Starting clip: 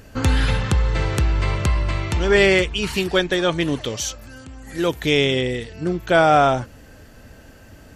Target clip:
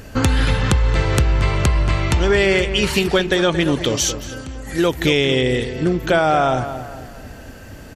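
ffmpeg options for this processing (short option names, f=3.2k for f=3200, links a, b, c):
-filter_complex "[0:a]acompressor=threshold=-20dB:ratio=6,asplit=2[a][b];[b]adelay=227,lowpass=f=2.6k:p=1,volume=-10.5dB,asplit=2[c][d];[d]adelay=227,lowpass=f=2.6k:p=1,volume=0.43,asplit=2[e][f];[f]adelay=227,lowpass=f=2.6k:p=1,volume=0.43,asplit=2[g][h];[h]adelay=227,lowpass=f=2.6k:p=1,volume=0.43,asplit=2[i][j];[j]adelay=227,lowpass=f=2.6k:p=1,volume=0.43[k];[a][c][e][g][i][k]amix=inputs=6:normalize=0,volume=7dB"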